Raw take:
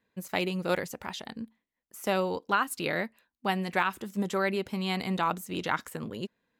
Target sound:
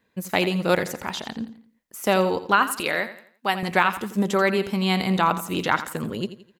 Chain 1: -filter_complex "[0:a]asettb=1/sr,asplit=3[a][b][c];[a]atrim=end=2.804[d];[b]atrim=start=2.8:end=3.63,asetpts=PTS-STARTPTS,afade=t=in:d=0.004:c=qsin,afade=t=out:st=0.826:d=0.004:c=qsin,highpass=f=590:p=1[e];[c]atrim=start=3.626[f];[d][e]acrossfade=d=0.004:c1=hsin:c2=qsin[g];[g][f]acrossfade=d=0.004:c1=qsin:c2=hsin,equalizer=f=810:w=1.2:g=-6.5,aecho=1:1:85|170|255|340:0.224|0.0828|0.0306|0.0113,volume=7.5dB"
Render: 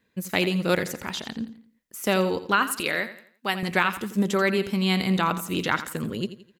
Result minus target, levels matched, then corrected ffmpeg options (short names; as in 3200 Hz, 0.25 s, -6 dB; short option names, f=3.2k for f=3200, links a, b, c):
1000 Hz band -2.5 dB
-filter_complex "[0:a]asettb=1/sr,asplit=3[a][b][c];[a]atrim=end=2.804[d];[b]atrim=start=2.8:end=3.63,asetpts=PTS-STARTPTS,afade=t=in:d=0.004:c=qsin,afade=t=out:st=0.826:d=0.004:c=qsin,highpass=f=590:p=1[e];[c]atrim=start=3.626[f];[d][e]acrossfade=d=0.004:c1=hsin:c2=qsin[g];[g][f]acrossfade=d=0.004:c1=qsin:c2=hsin,aecho=1:1:85|170|255|340:0.224|0.0828|0.0306|0.0113,volume=7.5dB"